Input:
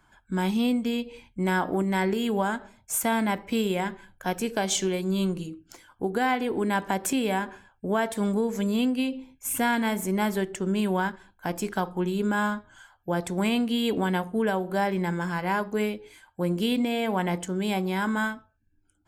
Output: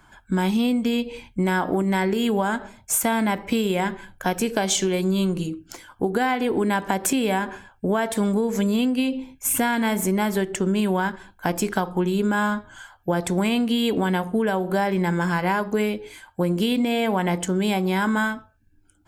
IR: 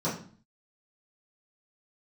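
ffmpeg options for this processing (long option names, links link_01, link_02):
-af "acompressor=threshold=-27dB:ratio=6,volume=8.5dB"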